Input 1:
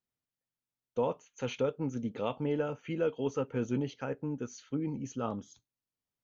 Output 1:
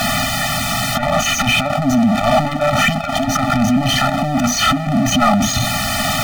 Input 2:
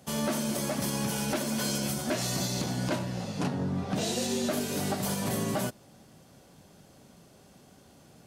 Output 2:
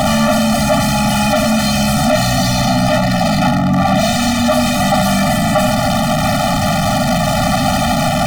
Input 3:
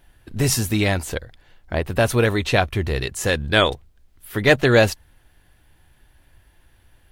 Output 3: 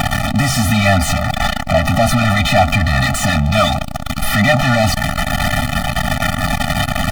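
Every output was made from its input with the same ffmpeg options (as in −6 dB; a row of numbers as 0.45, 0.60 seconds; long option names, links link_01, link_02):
-filter_complex "[0:a]aeval=exprs='val(0)+0.5*0.158*sgn(val(0))':channel_layout=same,asplit=2[link_01][link_02];[link_02]highpass=frequency=720:poles=1,volume=36dB,asoftclip=type=tanh:threshold=0dB[link_03];[link_01][link_03]amix=inputs=2:normalize=0,lowpass=frequency=2000:poles=1,volume=-6dB,afftfilt=real='re*eq(mod(floor(b*sr/1024/290),2),0)':imag='im*eq(mod(floor(b*sr/1024/290),2),0)':win_size=1024:overlap=0.75,volume=-1.5dB"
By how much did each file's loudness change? +19.5, +16.5, +4.5 LU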